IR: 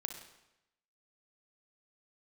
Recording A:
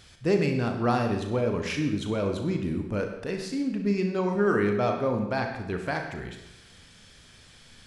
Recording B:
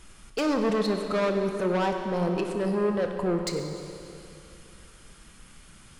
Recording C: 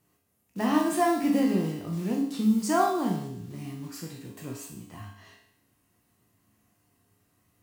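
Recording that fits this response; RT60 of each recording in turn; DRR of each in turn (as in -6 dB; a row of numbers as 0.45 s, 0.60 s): A; 0.90 s, 2.8 s, 0.70 s; 4.0 dB, 4.0 dB, -1.0 dB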